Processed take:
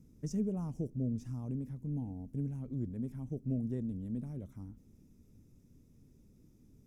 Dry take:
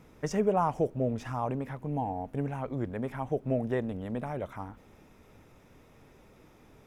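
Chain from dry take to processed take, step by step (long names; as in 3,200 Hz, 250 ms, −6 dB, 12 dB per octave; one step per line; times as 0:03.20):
drawn EQ curve 250 Hz 0 dB, 760 Hz −25 dB, 1,800 Hz −24 dB, 3,400 Hz −18 dB, 5,900 Hz −5 dB
level −2 dB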